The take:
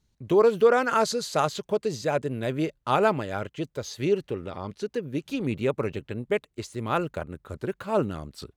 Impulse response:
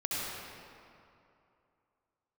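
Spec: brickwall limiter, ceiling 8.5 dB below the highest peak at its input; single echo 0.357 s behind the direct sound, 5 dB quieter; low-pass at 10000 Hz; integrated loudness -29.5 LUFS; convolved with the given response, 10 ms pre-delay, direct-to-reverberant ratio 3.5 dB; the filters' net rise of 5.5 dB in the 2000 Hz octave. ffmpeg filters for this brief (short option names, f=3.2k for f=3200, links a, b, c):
-filter_complex "[0:a]lowpass=10k,equalizer=f=2k:t=o:g=8,alimiter=limit=-13.5dB:level=0:latency=1,aecho=1:1:357:0.562,asplit=2[a][b];[1:a]atrim=start_sample=2205,adelay=10[c];[b][c]afir=irnorm=-1:irlink=0,volume=-10dB[d];[a][d]amix=inputs=2:normalize=0,volume=-4.5dB"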